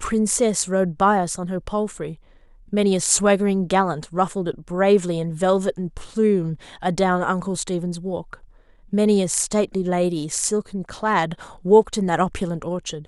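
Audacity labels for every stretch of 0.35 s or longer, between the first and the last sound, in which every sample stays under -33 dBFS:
2.140000	2.730000	silence
8.340000	8.930000	silence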